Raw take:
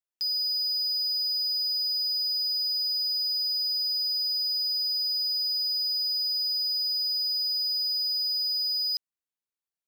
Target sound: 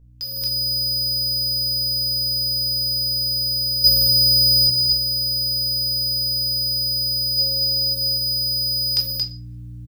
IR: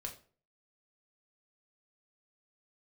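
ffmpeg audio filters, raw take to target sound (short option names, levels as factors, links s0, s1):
-filter_complex "[0:a]alimiter=level_in=1.26:limit=0.0631:level=0:latency=1,volume=0.794,aeval=exprs='val(0)+0.00158*(sin(2*PI*60*n/s)+sin(2*PI*2*60*n/s)/2+sin(2*PI*3*60*n/s)/3+sin(2*PI*4*60*n/s)/4+sin(2*PI*5*60*n/s)/5)':c=same,asettb=1/sr,asplit=3[s0][s1][s2];[s0]atrim=end=3.844[s3];[s1]atrim=start=3.84:end=4.67,asetpts=PTS-STARTPTS,afade=t=in:d=0.004:c=qsin,afade=t=out:st=0.826:d=0.004:c=qsin,acontrast=78[s4];[s2]atrim=start=4.666[s5];[s3][s4]acrossfade=d=0.004:c1=hsin:c2=qsin[s6];[s6][s5]acrossfade=d=0.004:c1=qsin:c2=hsin,asplit=3[s7][s8][s9];[s7]afade=t=out:st=7.37:d=0.02[s10];[s8]equalizer=f=500:t=o:w=1:g=8,equalizer=f=1000:t=o:w=1:g=-4,equalizer=f=2000:t=o:w=1:g=-10,equalizer=f=4000:t=o:w=1:g=7,equalizer=f=8000:t=o:w=1:g=-5,afade=t=in:st=7.37:d=0.02,afade=t=out:st=7.93:d=0.02[s11];[s9]afade=t=in:st=7.93:d=0.02[s12];[s10][s11][s12]amix=inputs=3:normalize=0,aecho=1:1:227:0.562[s13];[1:a]atrim=start_sample=2205[s14];[s13][s14]afir=irnorm=-1:irlink=0,dynaudnorm=f=240:g=3:m=6.31,volume=2.51"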